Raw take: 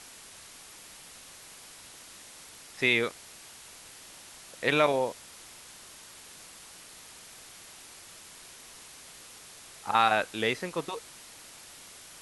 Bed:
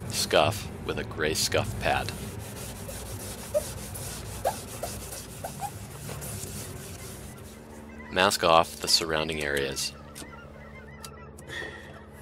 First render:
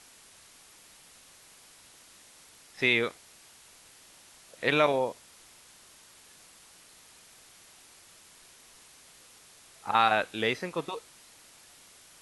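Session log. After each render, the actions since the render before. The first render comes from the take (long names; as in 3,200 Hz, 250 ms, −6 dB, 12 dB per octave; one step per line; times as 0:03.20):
noise reduction from a noise print 6 dB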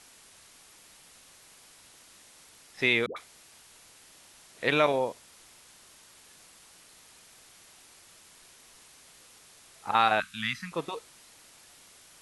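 0:03.06–0:04.58: all-pass dispersion highs, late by 103 ms, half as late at 550 Hz
0:10.20–0:10.72: elliptic band-stop filter 220–1,200 Hz, stop band 50 dB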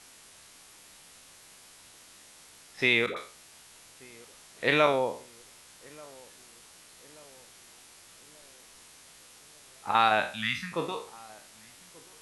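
peak hold with a decay on every bin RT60 0.40 s
feedback echo with a low-pass in the loop 1,183 ms, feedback 55%, low-pass 1,000 Hz, level −23 dB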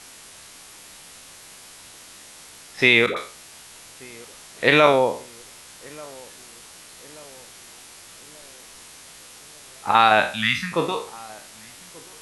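level +9 dB
brickwall limiter −2 dBFS, peak gain reduction 3 dB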